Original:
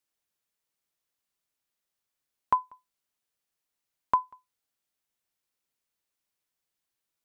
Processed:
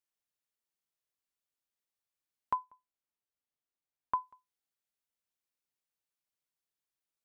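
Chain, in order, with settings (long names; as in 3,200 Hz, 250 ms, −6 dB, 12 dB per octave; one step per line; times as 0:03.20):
0:02.64–0:04.24: one half of a high-frequency compander decoder only
level −8 dB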